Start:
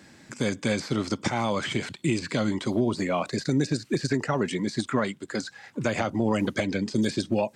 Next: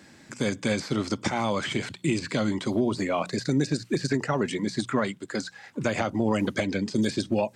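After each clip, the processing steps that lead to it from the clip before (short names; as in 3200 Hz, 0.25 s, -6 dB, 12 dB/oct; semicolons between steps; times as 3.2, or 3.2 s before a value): notches 60/120/180 Hz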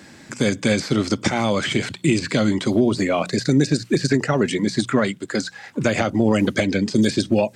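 dynamic EQ 970 Hz, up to -6 dB, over -45 dBFS, Q 2.2; gain +7.5 dB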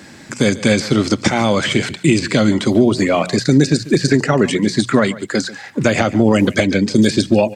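echo 0.142 s -18 dB; gain +5 dB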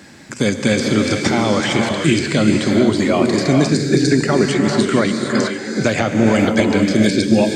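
non-linear reverb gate 0.49 s rising, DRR 2 dB; gain -2.5 dB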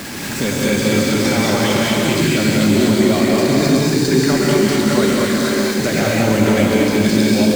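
zero-crossing step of -17.5 dBFS; thin delay 0.134 s, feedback 82%, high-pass 4500 Hz, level -7 dB; non-linear reverb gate 0.26 s rising, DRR -2.5 dB; gain -6.5 dB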